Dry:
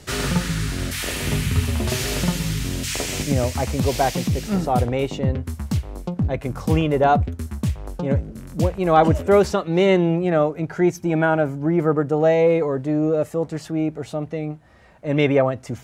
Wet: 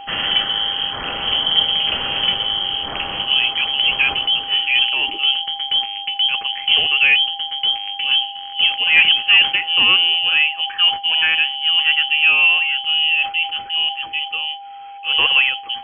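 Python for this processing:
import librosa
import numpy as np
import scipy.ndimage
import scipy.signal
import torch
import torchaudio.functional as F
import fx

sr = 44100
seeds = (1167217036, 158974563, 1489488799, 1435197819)

y = fx.cvsd(x, sr, bps=64000)
y = y + 10.0 ** (-35.0 / 20.0) * np.sin(2.0 * np.pi * 2400.0 * np.arange(len(y)) / sr)
y = fx.freq_invert(y, sr, carrier_hz=3200)
y = fx.sustainer(y, sr, db_per_s=150.0)
y = y * librosa.db_to_amplitude(2.5)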